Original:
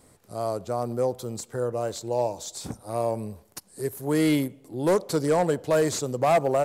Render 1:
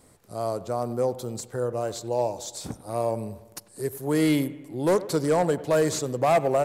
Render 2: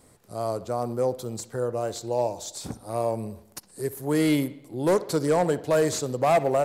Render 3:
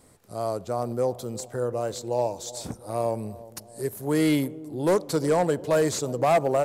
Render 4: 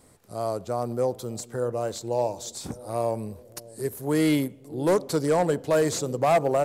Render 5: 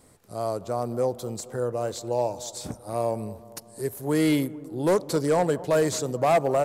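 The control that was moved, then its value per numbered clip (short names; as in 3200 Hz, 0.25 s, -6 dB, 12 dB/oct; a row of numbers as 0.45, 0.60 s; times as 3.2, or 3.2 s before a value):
analogue delay, time: 96, 62, 352, 602, 229 ms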